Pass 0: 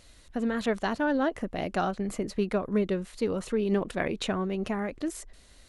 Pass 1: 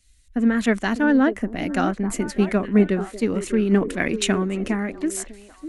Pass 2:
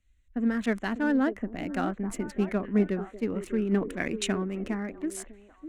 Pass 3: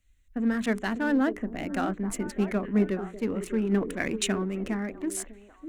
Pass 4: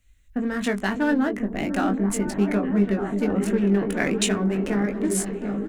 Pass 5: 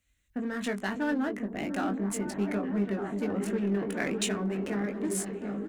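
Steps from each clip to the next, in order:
ten-band EQ 125 Hz -5 dB, 250 Hz +6 dB, 500 Hz -5 dB, 1000 Hz -4 dB, 2000 Hz +5 dB, 4000 Hz -5 dB, 8000 Hz +4 dB; on a send: delay with a stepping band-pass 0.599 s, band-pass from 370 Hz, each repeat 1.4 oct, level -5.5 dB; on the sum: three-band expander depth 70%; gain +7 dB
Wiener smoothing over 9 samples; gain -7.5 dB
high shelf 6100 Hz +5.5 dB; notches 60/120/180/240/300/360/420 Hz; in parallel at -11 dB: hard clip -31 dBFS, distortion -5 dB
compressor, threshold -25 dBFS, peak gain reduction 7 dB; doubler 20 ms -6 dB; on a send: repeats that get brighter 0.735 s, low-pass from 400 Hz, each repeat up 1 oct, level -6 dB; on the sum: gain +5.5 dB
HPF 140 Hz 6 dB/oct; in parallel at -7.5 dB: hard clip -25.5 dBFS, distortion -7 dB; on the sum: gain -8.5 dB

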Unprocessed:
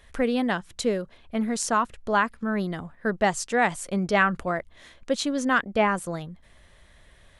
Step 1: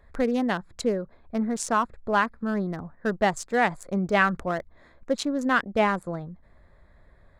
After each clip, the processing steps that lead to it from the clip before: Wiener smoothing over 15 samples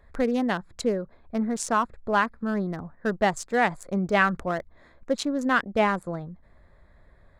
nothing audible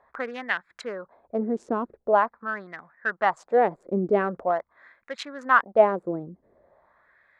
LFO band-pass sine 0.44 Hz 340–2000 Hz; gain +8.5 dB

